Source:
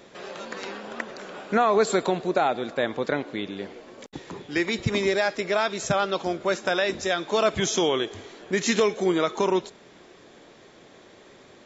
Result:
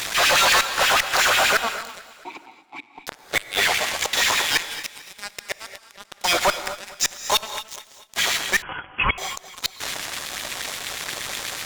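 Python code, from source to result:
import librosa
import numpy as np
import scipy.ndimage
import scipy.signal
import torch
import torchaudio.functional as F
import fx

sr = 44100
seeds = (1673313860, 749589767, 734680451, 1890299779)

p1 = fx.tilt_eq(x, sr, slope=3.5)
p2 = fx.level_steps(p1, sr, step_db=11)
p3 = p1 + (p2 * 10.0 ** (-2.0 / 20.0))
p4 = fx.transient(p3, sr, attack_db=-8, sustain_db=2)
p5 = fx.rider(p4, sr, range_db=4, speed_s=2.0)
p6 = fx.filter_lfo_highpass(p5, sr, shape='sine', hz=8.3, low_hz=650.0, high_hz=2500.0, q=2.2)
p7 = fx.gate_flip(p6, sr, shuts_db=-14.0, range_db=-28)
p8 = fx.fuzz(p7, sr, gain_db=36.0, gate_db=-40.0)
p9 = fx.vowel_filter(p8, sr, vowel='u', at=(2.05, 2.99))
p10 = fx.echo_feedback(p9, sr, ms=222, feedback_pct=49, wet_db=-19.0)
p11 = fx.rev_gated(p10, sr, seeds[0], gate_ms=270, shape='rising', drr_db=11.0)
p12 = fx.freq_invert(p11, sr, carrier_hz=3300, at=(8.62, 9.18))
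y = p12 * 10.0 ** (-1.0 / 20.0)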